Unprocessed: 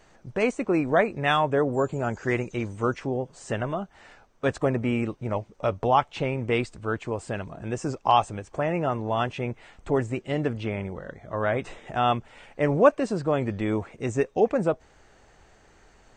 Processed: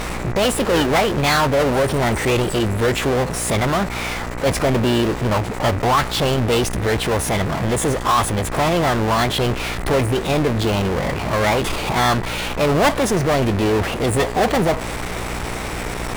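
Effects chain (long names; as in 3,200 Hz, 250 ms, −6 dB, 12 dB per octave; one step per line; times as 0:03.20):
power curve on the samples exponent 0.35
hum with harmonics 60 Hz, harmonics 33, −26 dBFS −4 dB per octave
formants moved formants +4 semitones
level −3.5 dB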